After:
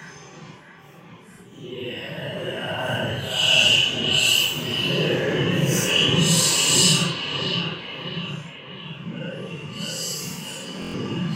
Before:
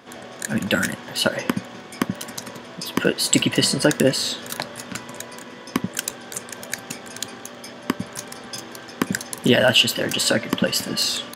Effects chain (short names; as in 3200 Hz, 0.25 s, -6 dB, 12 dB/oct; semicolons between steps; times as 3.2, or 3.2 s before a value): bell 160 Hz +12.5 dB 0.25 oct; auto swell 0.793 s; ripple EQ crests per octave 0.73, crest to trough 8 dB; on a send: analogue delay 98 ms, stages 2048, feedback 52%, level -3 dB; on the sum: Paulstretch 6.6×, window 0.05 s, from 9.24; stuck buffer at 10.8, samples 1024, times 5; gain +1.5 dB